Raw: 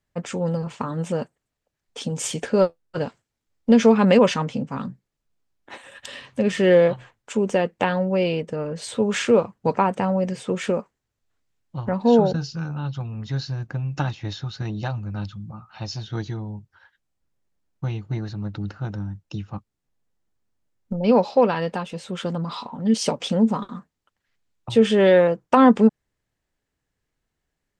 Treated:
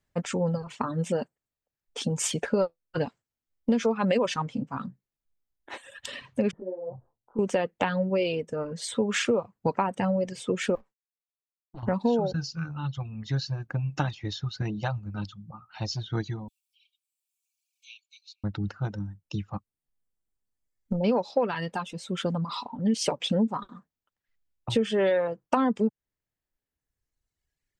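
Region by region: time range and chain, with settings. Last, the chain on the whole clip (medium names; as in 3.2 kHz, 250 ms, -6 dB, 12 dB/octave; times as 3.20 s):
6.51–7.39 s: inverse Chebyshev low-pass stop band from 2.3 kHz, stop band 50 dB + compression 12:1, threshold -24 dBFS + detune thickener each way 37 cents
10.75–11.83 s: comb filter that takes the minimum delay 9.1 ms + expander -58 dBFS + compression 2.5:1, threshold -43 dBFS
16.48–18.44 s: brick-wall FIR high-pass 2.2 kHz + three bands compressed up and down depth 40%
whole clip: reverb removal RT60 1.9 s; compression 6:1, threshold -21 dBFS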